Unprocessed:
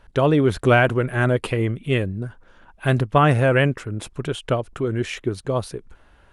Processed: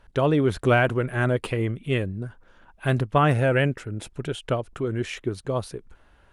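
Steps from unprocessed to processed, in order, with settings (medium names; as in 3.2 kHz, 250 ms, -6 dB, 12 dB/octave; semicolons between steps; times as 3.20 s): 3.37–4.43 s: band-stop 1.1 kHz, Q 5; de-esser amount 55%; trim -3.5 dB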